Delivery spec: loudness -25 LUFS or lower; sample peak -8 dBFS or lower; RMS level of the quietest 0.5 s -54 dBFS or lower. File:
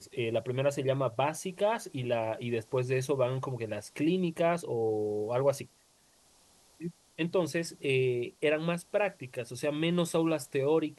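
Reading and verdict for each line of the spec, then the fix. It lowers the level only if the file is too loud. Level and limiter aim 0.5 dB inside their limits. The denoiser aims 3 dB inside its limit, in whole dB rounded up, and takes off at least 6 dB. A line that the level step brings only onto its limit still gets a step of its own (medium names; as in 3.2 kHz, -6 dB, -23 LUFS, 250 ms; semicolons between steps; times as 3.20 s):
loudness -31.0 LUFS: pass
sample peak -15.5 dBFS: pass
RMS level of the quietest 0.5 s -65 dBFS: pass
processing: none needed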